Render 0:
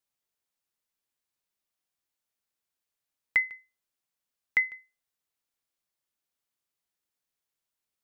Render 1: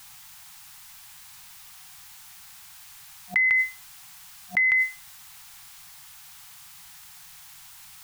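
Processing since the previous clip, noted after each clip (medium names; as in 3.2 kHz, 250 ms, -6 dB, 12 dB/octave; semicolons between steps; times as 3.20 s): FFT band-reject 190–720 Hz; level flattener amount 100%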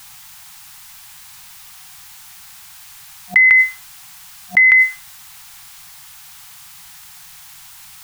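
dynamic bell 1.6 kHz, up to +6 dB, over -35 dBFS, Q 1.4; trim +7 dB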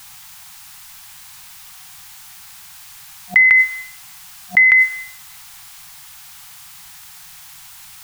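reverberation RT60 0.75 s, pre-delay 47 ms, DRR 13.5 dB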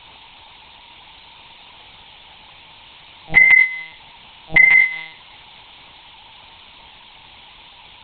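static phaser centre 410 Hz, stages 6; monotone LPC vocoder at 8 kHz 160 Hz; trim +9 dB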